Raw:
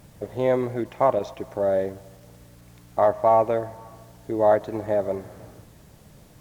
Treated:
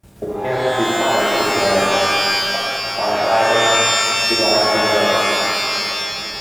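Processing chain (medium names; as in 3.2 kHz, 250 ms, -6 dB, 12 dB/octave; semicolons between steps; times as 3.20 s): comb of notches 250 Hz; repeats whose band climbs or falls 749 ms, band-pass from 190 Hz, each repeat 1.4 oct, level -6.5 dB; harmonic-percussive split percussive +9 dB; level held to a coarse grid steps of 23 dB; pitch-shifted reverb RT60 2.5 s, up +12 st, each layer -2 dB, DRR -6.5 dB; trim +1 dB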